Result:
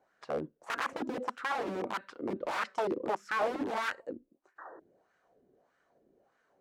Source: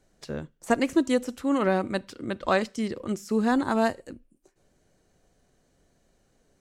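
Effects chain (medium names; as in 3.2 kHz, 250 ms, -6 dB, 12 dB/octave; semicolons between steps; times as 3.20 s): integer overflow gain 25 dB; painted sound noise, 4.58–4.80 s, 290–1900 Hz -49 dBFS; wah-wah 1.6 Hz 320–1500 Hz, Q 2.5; trim +7 dB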